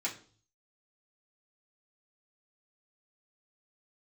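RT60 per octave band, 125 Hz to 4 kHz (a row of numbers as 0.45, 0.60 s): 0.85, 0.50, 0.50, 0.40, 0.35, 0.45 s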